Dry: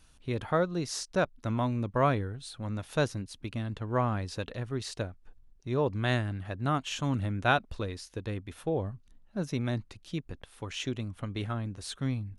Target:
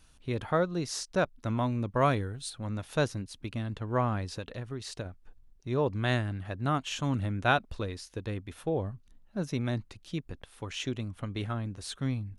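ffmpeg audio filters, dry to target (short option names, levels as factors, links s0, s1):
-filter_complex "[0:a]asettb=1/sr,asplit=3[s0][s1][s2];[s0]atrim=end=2.014[s3];[s1]atrim=start=2.01:end=2.5,asetpts=PTS-STARTPTS,afade=t=in:d=0.004:c=qsin,afade=t=out:st=0.486:d=0.004:c=qsin,highshelf=f=4600:g=9.5[s4];[s2]atrim=start=2.496[s5];[s3][s4]acrossfade=d=0.004:c1=hsin:c2=qsin[s6];[s6][s5]acrossfade=d=0.004:c1=qsin:c2=hsin,asettb=1/sr,asplit=3[s7][s8][s9];[s7]atrim=end=4.334[s10];[s8]atrim=start=4.33:end=5.06,asetpts=PTS-STARTPTS,afade=t=in:d=0.004:c=qsin,afade=t=out:st=0.726:d=0.004:c=qsin,acompressor=threshold=0.02:ratio=4[s11];[s9]atrim=start=5.056[s12];[s10][s11]acrossfade=d=0.004:c1=hsin:c2=qsin[s13];[s13][s12]acrossfade=d=0.004:c1=qsin:c2=hsin"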